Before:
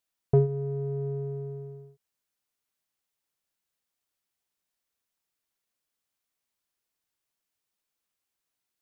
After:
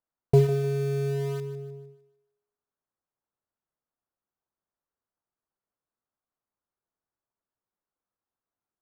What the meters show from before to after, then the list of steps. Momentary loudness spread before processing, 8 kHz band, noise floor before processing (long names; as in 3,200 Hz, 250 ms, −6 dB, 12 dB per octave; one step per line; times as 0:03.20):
17 LU, can't be measured, below −85 dBFS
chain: low-pass filter 1,400 Hz 24 dB per octave
in parallel at −9 dB: bit reduction 5 bits
on the sum: feedback echo with a high-pass in the loop 152 ms, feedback 40%, high-pass 300 Hz, level −12 dB